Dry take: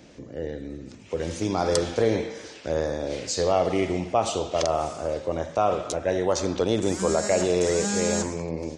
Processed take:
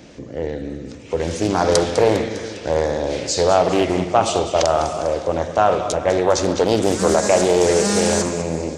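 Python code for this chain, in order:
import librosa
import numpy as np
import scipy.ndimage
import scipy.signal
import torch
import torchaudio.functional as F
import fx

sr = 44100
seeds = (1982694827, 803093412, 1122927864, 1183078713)

y = fx.echo_feedback(x, sr, ms=202, feedback_pct=53, wet_db=-12)
y = fx.doppler_dist(y, sr, depth_ms=0.33)
y = y * librosa.db_to_amplitude(7.0)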